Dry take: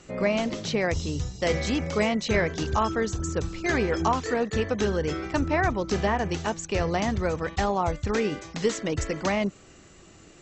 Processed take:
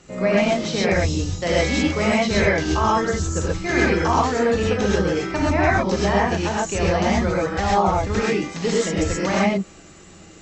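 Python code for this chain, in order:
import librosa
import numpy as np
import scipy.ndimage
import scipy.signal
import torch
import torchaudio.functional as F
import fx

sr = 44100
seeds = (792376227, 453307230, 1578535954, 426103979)

y = fx.rev_gated(x, sr, seeds[0], gate_ms=150, shape='rising', drr_db=-5.5)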